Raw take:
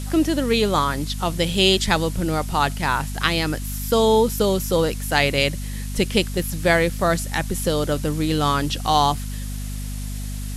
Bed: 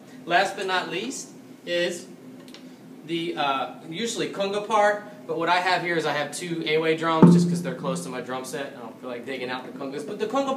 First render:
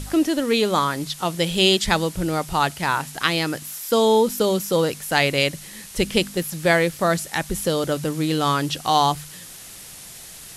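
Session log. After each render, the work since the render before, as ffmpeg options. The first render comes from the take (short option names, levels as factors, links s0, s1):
-af "bandreject=f=50:t=h:w=4,bandreject=f=100:t=h:w=4,bandreject=f=150:t=h:w=4,bandreject=f=200:t=h:w=4,bandreject=f=250:t=h:w=4"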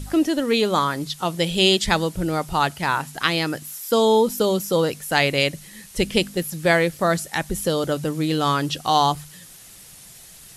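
-af "afftdn=nr=6:nf=-40"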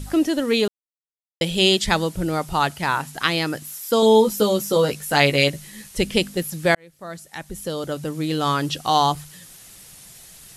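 -filter_complex "[0:a]asettb=1/sr,asplit=3[s0][s1][s2];[s0]atrim=end=4.014[s3];[s1]atrim=start=4.01:end=5.89,asetpts=PTS-STARTPTS,afade=t=in:d=0.004:c=qsin,afade=t=out:st=1.876:d=0.004:c=qsin,asplit=2[s4][s5];[s5]adelay=14,volume=0.631[s6];[s4][s6]amix=inputs=2:normalize=0,atrim=end_sample=82908[s7];[s2]atrim=start=5.886[s8];[s3][s7]acrossfade=d=0.004:c1=hsin:c2=qsin[s9];[s9][s8]acrossfade=d=0.004:c1=qsin:c2=hsin,asplit=4[s10][s11][s12][s13];[s10]atrim=end=0.68,asetpts=PTS-STARTPTS,afade=t=out:st=0.676:d=0.004:c=hsin[s14];[s11]atrim=start=0.68:end=1.41,asetpts=PTS-STARTPTS,volume=0[s15];[s12]atrim=start=1.41:end=6.75,asetpts=PTS-STARTPTS,afade=t=in:d=0.004:c=hsin,afade=t=out:st=5.336:d=0.004:c=hsin[s16];[s13]atrim=start=6.75,asetpts=PTS-STARTPTS,afade=t=in:d=1.89[s17];[s14][s15][s16][s17]concat=n=4:v=0:a=1"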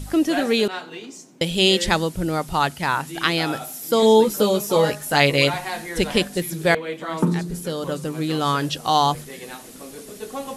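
-filter_complex "[1:a]volume=0.447[s0];[0:a][s0]amix=inputs=2:normalize=0"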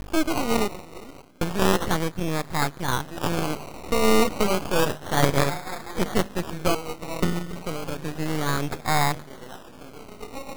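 -af "acrusher=samples=21:mix=1:aa=0.000001:lfo=1:lforange=12.6:lforate=0.31,aeval=exprs='max(val(0),0)':c=same"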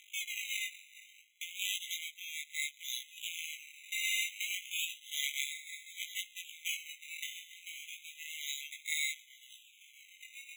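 -af "flanger=delay=16.5:depth=4.7:speed=0.64,afftfilt=real='re*eq(mod(floor(b*sr/1024/2000),2),1)':imag='im*eq(mod(floor(b*sr/1024/2000),2),1)':win_size=1024:overlap=0.75"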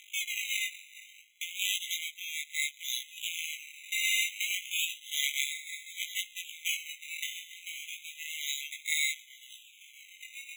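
-af "volume=1.78"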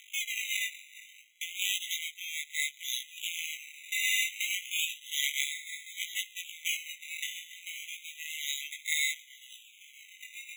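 -af "afreqshift=-41"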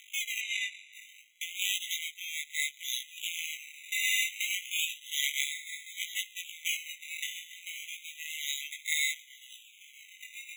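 -filter_complex "[0:a]asplit=3[s0][s1][s2];[s0]afade=t=out:st=0.4:d=0.02[s3];[s1]lowpass=6100,afade=t=in:st=0.4:d=0.02,afade=t=out:st=0.92:d=0.02[s4];[s2]afade=t=in:st=0.92:d=0.02[s5];[s3][s4][s5]amix=inputs=3:normalize=0"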